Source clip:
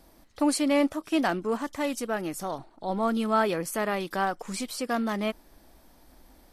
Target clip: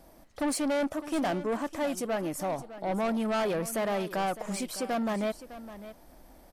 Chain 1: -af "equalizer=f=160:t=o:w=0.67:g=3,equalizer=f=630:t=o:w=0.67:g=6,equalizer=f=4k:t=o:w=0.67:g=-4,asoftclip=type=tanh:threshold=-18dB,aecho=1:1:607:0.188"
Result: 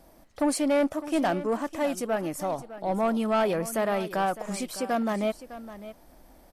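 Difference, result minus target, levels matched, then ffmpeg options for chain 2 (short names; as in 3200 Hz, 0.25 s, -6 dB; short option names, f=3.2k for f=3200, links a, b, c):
soft clip: distortion -7 dB
-af "equalizer=f=160:t=o:w=0.67:g=3,equalizer=f=630:t=o:w=0.67:g=6,equalizer=f=4k:t=o:w=0.67:g=-4,asoftclip=type=tanh:threshold=-25.5dB,aecho=1:1:607:0.188"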